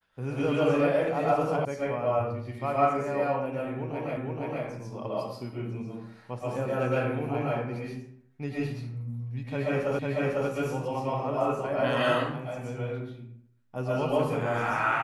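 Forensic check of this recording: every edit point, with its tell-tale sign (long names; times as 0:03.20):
0:01.65: cut off before it has died away
0:04.17: the same again, the last 0.47 s
0:09.99: the same again, the last 0.5 s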